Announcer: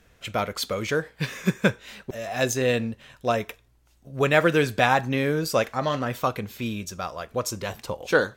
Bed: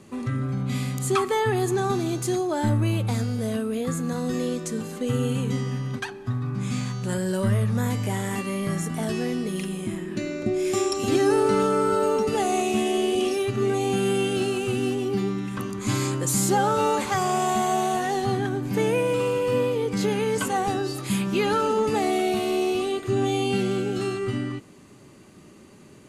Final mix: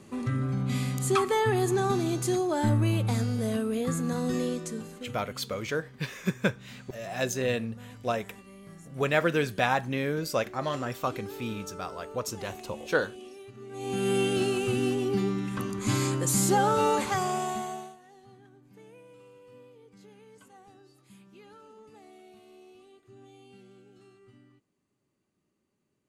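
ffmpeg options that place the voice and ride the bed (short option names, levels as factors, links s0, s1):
-filter_complex "[0:a]adelay=4800,volume=0.531[s0];[1:a]volume=7.5,afade=t=out:st=4.36:d=0.83:silence=0.105925,afade=t=in:st=13.7:d=0.47:silence=0.105925,afade=t=out:st=16.95:d=1.01:silence=0.0421697[s1];[s0][s1]amix=inputs=2:normalize=0"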